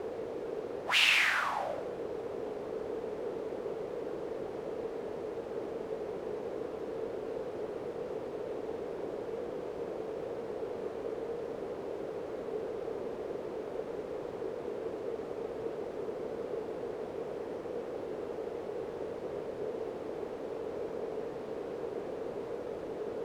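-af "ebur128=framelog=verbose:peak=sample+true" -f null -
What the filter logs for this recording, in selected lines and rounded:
Integrated loudness:
  I:         -36.7 LUFS
  Threshold: -46.7 LUFS
Loudness range:
  LRA:         7.7 LU
  Threshold: -57.9 LUFS
  LRA low:   -39.4 LUFS
  LRA high:  -31.6 LUFS
Sample peak:
  Peak:      -11.8 dBFS
True peak:
  Peak:      -11.6 dBFS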